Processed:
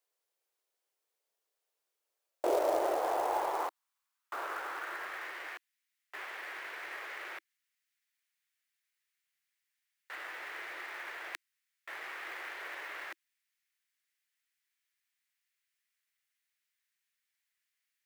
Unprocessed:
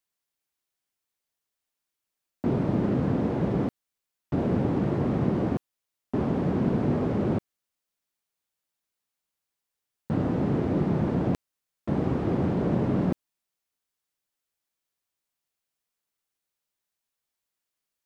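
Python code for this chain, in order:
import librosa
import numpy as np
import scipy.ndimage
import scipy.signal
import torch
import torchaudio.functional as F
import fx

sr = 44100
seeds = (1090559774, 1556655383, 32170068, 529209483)

y = scipy.signal.sosfilt(scipy.signal.ellip(4, 1.0, 40, 330.0, 'highpass', fs=sr, output='sos'), x)
y = fx.filter_sweep_highpass(y, sr, from_hz=460.0, to_hz=1900.0, start_s=1.95, end_s=5.4, q=2.9)
y = fx.quant_float(y, sr, bits=2)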